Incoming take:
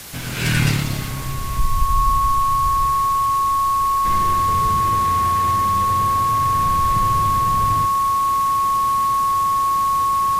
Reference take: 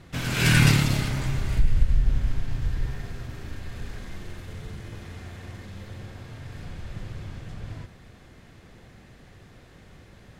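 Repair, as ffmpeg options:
-af "adeclick=t=4,bandreject=f=1100:w=30,afwtdn=0.018,asetnsamples=n=441:p=0,asendcmd='4.05 volume volume -12dB',volume=1"

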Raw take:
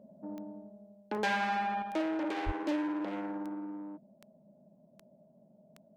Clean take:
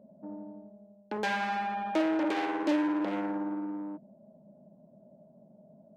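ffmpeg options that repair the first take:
-filter_complex "[0:a]adeclick=t=4,asplit=3[s0][s1][s2];[s0]afade=t=out:st=2.45:d=0.02[s3];[s1]highpass=f=140:w=0.5412,highpass=f=140:w=1.3066,afade=t=in:st=2.45:d=0.02,afade=t=out:st=2.57:d=0.02[s4];[s2]afade=t=in:st=2.57:d=0.02[s5];[s3][s4][s5]amix=inputs=3:normalize=0,asetnsamples=n=441:p=0,asendcmd='1.82 volume volume 5dB',volume=1"

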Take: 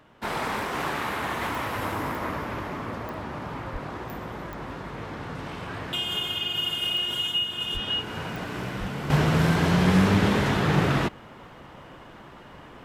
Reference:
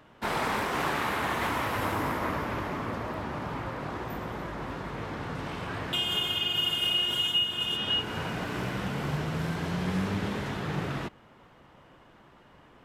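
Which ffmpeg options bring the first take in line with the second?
-filter_complex "[0:a]adeclick=t=4,asplit=3[s0][s1][s2];[s0]afade=t=out:st=3.72:d=0.02[s3];[s1]highpass=f=140:w=0.5412,highpass=f=140:w=1.3066,afade=t=in:st=3.72:d=0.02,afade=t=out:st=3.84:d=0.02[s4];[s2]afade=t=in:st=3.84:d=0.02[s5];[s3][s4][s5]amix=inputs=3:normalize=0,asplit=3[s6][s7][s8];[s6]afade=t=out:st=7.73:d=0.02[s9];[s7]highpass=f=140:w=0.5412,highpass=f=140:w=1.3066,afade=t=in:st=7.73:d=0.02,afade=t=out:st=7.85:d=0.02[s10];[s8]afade=t=in:st=7.85:d=0.02[s11];[s9][s10][s11]amix=inputs=3:normalize=0,asplit=3[s12][s13][s14];[s12]afade=t=out:st=8.79:d=0.02[s15];[s13]highpass=f=140:w=0.5412,highpass=f=140:w=1.3066,afade=t=in:st=8.79:d=0.02,afade=t=out:st=8.91:d=0.02[s16];[s14]afade=t=in:st=8.91:d=0.02[s17];[s15][s16][s17]amix=inputs=3:normalize=0,asetnsamples=n=441:p=0,asendcmd='9.1 volume volume -10dB',volume=1"

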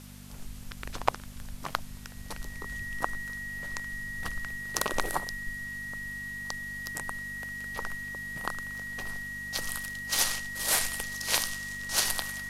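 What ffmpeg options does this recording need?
-af "bandreject=f=49.2:t=h:w=4,bandreject=f=98.4:t=h:w=4,bandreject=f=147.6:t=h:w=4,bandreject=f=196.8:t=h:w=4,bandreject=f=246:t=h:w=4,bandreject=f=1900:w=30,afwtdn=0.0025"

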